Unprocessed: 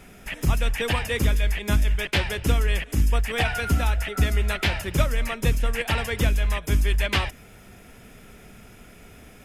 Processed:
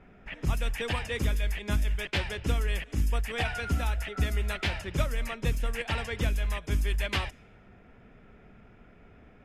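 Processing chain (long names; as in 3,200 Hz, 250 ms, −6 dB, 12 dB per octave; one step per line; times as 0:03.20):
low-pass that shuts in the quiet parts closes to 1,700 Hz, open at −18.5 dBFS
level −6.5 dB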